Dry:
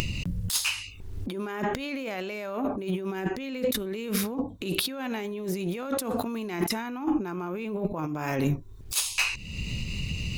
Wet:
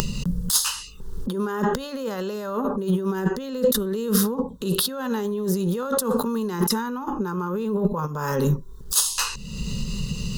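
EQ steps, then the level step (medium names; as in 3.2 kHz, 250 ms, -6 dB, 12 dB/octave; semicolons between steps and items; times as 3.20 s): static phaser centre 460 Hz, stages 8; +8.5 dB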